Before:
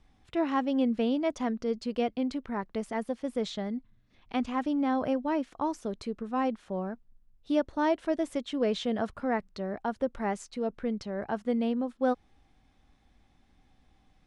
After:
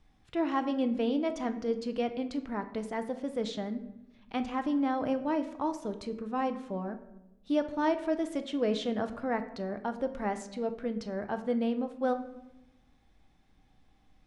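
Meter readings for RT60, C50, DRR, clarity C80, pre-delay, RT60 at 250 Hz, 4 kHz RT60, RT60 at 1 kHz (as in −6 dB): 0.95 s, 12.5 dB, 8.0 dB, 14.5 dB, 6 ms, 1.3 s, 0.55 s, 0.85 s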